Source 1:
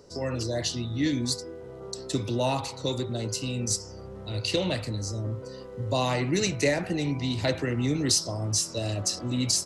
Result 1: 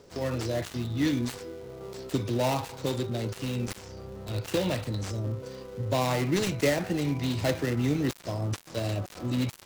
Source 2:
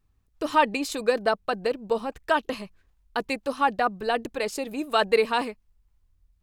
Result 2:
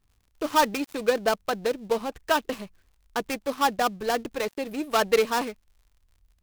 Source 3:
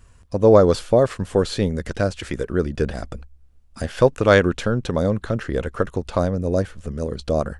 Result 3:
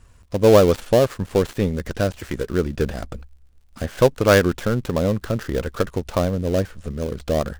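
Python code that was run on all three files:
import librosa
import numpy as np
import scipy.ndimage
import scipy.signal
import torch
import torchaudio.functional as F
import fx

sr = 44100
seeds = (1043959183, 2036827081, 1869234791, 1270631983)

y = fx.dead_time(x, sr, dead_ms=0.13)
y = fx.dmg_crackle(y, sr, seeds[0], per_s=67.0, level_db=-52.0)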